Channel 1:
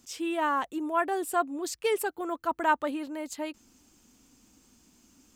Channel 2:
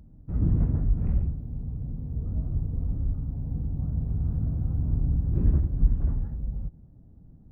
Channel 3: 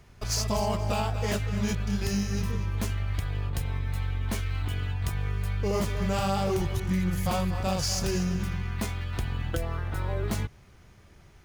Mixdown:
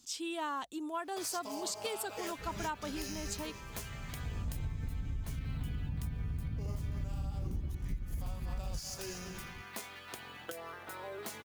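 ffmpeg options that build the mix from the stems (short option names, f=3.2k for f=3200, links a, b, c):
-filter_complex "[0:a]equalizer=f=500:t=o:w=1:g=-5,equalizer=f=2k:t=o:w=1:g=-5,equalizer=f=4k:t=o:w=1:g=9,equalizer=f=8k:t=o:w=1:g=5,volume=-5.5dB,asplit=2[a][b];[1:a]adelay=2100,volume=0dB[c];[2:a]highpass=390,highshelf=f=8.3k:g=8.5,acompressor=threshold=-32dB:ratio=6,adelay=950,volume=-6dB[d];[b]apad=whole_len=424150[e];[c][e]sidechaincompress=threshold=-55dB:ratio=8:attack=36:release=1100[f];[a][f][d]amix=inputs=3:normalize=0,acompressor=threshold=-33dB:ratio=16"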